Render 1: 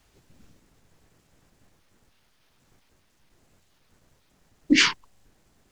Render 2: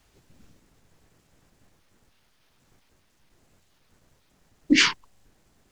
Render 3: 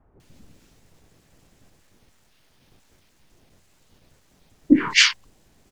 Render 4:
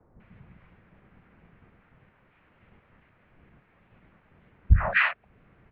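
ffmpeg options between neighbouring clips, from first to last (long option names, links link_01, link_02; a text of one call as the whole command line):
ffmpeg -i in.wav -af anull out.wav
ffmpeg -i in.wav -filter_complex "[0:a]acrossover=split=1300[link_01][link_02];[link_02]adelay=200[link_03];[link_01][link_03]amix=inputs=2:normalize=0,volume=5dB" out.wav
ffmpeg -i in.wav -af "bandreject=frequency=50:width_type=h:width=6,bandreject=frequency=100:width_type=h:width=6,bandreject=frequency=150:width_type=h:width=6,bandreject=frequency=200:width_type=h:width=6,alimiter=limit=-11.5dB:level=0:latency=1:release=397,highpass=frequency=150:width_type=q:width=0.5412,highpass=frequency=150:width_type=q:width=1.307,lowpass=frequency=2700:width_type=q:width=0.5176,lowpass=frequency=2700:width_type=q:width=0.7071,lowpass=frequency=2700:width_type=q:width=1.932,afreqshift=-350,volume=5dB" out.wav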